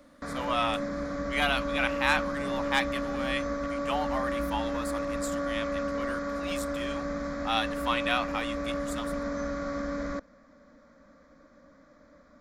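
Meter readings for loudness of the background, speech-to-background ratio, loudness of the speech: −32.5 LKFS, 0.0 dB, −32.5 LKFS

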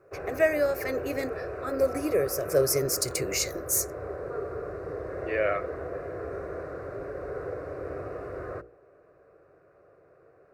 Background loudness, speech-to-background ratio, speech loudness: −36.5 LKFS, 9.0 dB, −27.5 LKFS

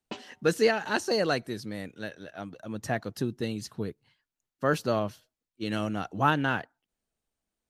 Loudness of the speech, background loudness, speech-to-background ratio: −30.0 LKFS, −44.0 LKFS, 14.0 dB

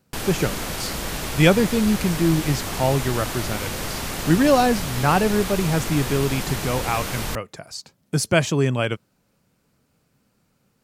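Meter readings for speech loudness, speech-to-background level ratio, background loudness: −22.0 LKFS, 6.0 dB, −28.0 LKFS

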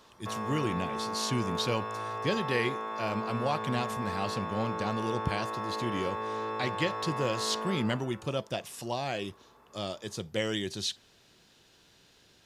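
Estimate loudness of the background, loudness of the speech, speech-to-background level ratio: −35.5 LKFS, −33.5 LKFS, 2.0 dB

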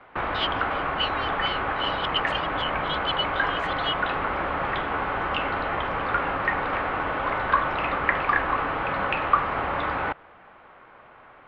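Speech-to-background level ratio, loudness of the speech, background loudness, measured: −5.5 dB, −31.5 LKFS, −26.0 LKFS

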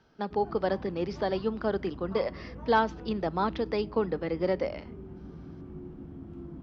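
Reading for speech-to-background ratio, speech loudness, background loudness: 14.0 dB, −30.5 LKFS, −44.5 LKFS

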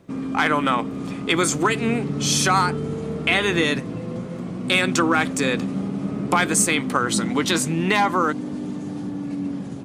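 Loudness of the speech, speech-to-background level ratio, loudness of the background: −21.5 LKFS, 6.5 dB, −28.0 LKFS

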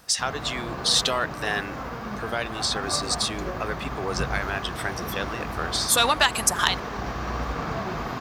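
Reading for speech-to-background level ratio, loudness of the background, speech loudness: 7.0 dB, −32.5 LKFS, −25.5 LKFS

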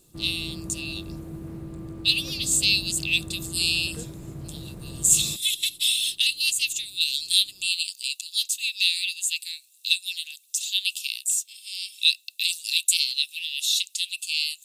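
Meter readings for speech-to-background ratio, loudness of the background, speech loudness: 15.0 dB, −38.5 LKFS, −23.5 LKFS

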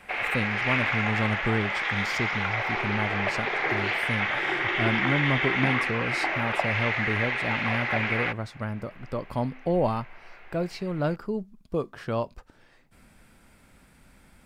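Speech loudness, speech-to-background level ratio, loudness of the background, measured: −31.0 LKFS, −5.0 dB, −26.0 LKFS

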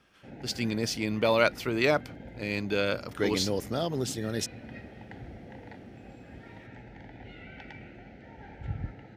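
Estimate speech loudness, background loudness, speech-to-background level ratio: −29.0 LKFS, −45.5 LKFS, 16.5 dB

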